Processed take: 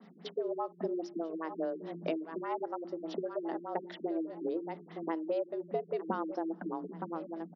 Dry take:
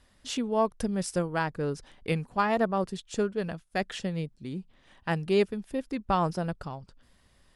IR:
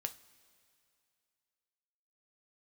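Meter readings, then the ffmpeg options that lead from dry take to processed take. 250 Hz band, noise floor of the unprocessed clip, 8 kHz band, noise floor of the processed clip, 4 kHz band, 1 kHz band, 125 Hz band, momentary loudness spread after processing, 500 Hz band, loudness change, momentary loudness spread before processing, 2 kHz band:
−5.5 dB, −63 dBFS, below −20 dB, −55 dBFS, −13.5 dB, −8.0 dB, −17.0 dB, 5 LU, −5.5 dB, −7.0 dB, 12 LU, −14.0 dB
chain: -filter_complex "[0:a]bandreject=frequency=6200:width=5.8,aecho=1:1:918|1836:0.133|0.0227,acontrast=90,asplit=2[link_01][link_02];[1:a]atrim=start_sample=2205[link_03];[link_02][link_03]afir=irnorm=-1:irlink=0,volume=-6dB[link_04];[link_01][link_04]amix=inputs=2:normalize=0,acompressor=threshold=-28dB:ratio=10,tiltshelf=frequency=1400:gain=5,afreqshift=160,adynamicequalizer=threshold=0.002:dfrequency=2500:dqfactor=2.4:tfrequency=2500:tqfactor=2.4:attack=5:release=100:ratio=0.375:range=2.5:mode=cutabove:tftype=bell,bandreject=frequency=50:width_type=h:width=6,bandreject=frequency=100:width_type=h:width=6,bandreject=frequency=150:width_type=h:width=6,bandreject=frequency=200:width_type=h:width=6,bandreject=frequency=250:width_type=h:width=6,bandreject=frequency=300:width_type=h:width=6,bandreject=frequency=350:width_type=h:width=6,bandreject=frequency=400:width_type=h:width=6,bandreject=frequency=450:width_type=h:width=6,afftfilt=real='re*lt(b*sr/1024,360*pow(7100/360,0.5+0.5*sin(2*PI*4.9*pts/sr)))':imag='im*lt(b*sr/1024,360*pow(7100/360,0.5+0.5*sin(2*PI*4.9*pts/sr)))':win_size=1024:overlap=0.75,volume=-6.5dB"

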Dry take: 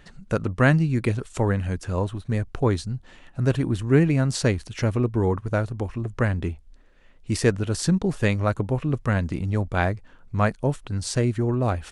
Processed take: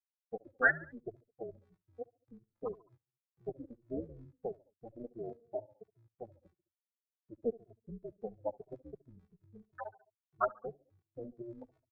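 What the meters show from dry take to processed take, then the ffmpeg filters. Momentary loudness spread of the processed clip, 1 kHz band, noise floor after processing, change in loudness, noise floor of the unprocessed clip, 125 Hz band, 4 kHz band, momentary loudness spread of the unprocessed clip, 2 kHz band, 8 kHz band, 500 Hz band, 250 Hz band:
17 LU, −12.5 dB, below −85 dBFS, −15.5 dB, −52 dBFS, −34.0 dB, below −40 dB, 9 LU, −7.0 dB, below −40 dB, −15.0 dB, −24.0 dB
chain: -filter_complex "[0:a]aemphasis=mode=reproduction:type=50fm,afftfilt=real='re*gte(hypot(re,im),0.447)':imag='im*gte(hypot(re,im),0.447)':win_size=1024:overlap=0.75,highpass=1200,highshelf=frequency=4200:gain=6.5,bandreject=frequency=2900:width=7.9,tremolo=f=230:d=0.667,aecho=1:1:70|140|210:0.0794|0.0381|0.0183,asplit=2[link_01][link_02];[link_02]adelay=2.2,afreqshift=-2.9[link_03];[link_01][link_03]amix=inputs=2:normalize=1,volume=10dB"

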